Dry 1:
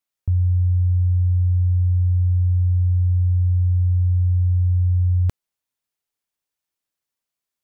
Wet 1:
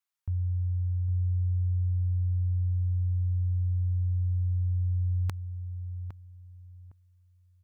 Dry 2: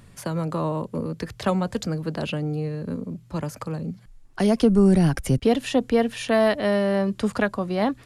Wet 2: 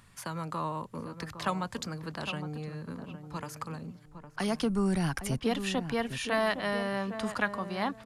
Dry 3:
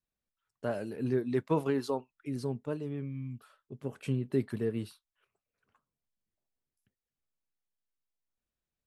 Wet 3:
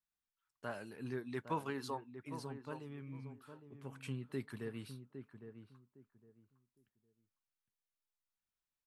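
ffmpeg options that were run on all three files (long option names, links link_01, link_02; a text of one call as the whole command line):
ffmpeg -i in.wav -filter_complex "[0:a]lowshelf=frequency=740:width_type=q:width=1.5:gain=-7,asplit=2[link_01][link_02];[link_02]adelay=809,lowpass=frequency=960:poles=1,volume=-8.5dB,asplit=2[link_03][link_04];[link_04]adelay=809,lowpass=frequency=960:poles=1,volume=0.24,asplit=2[link_05][link_06];[link_06]adelay=809,lowpass=frequency=960:poles=1,volume=0.24[link_07];[link_01][link_03][link_05][link_07]amix=inputs=4:normalize=0,volume=-4dB" out.wav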